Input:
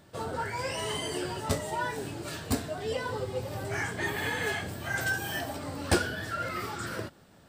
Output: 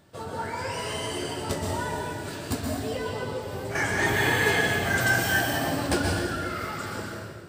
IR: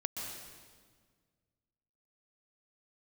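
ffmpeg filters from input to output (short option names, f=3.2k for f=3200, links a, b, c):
-filter_complex "[0:a]asettb=1/sr,asplit=3[a][b][c];[a]atrim=end=3.754[d];[b]atrim=start=3.75:end=5.87,asetpts=PTS-STARTPTS,afade=t=in:d=0.004:c=qsin,afade=t=out:st=2.116:d=0.004:c=qsin,acontrast=80[e];[c]atrim=start=5.866[f];[d][e]acrossfade=d=0.004:c1=hsin:c2=qsin[g];[g][f]acrossfade=d=0.004:c1=qsin:c2=hsin[h];[1:a]atrim=start_sample=2205[i];[h][i]afir=irnorm=-1:irlink=0"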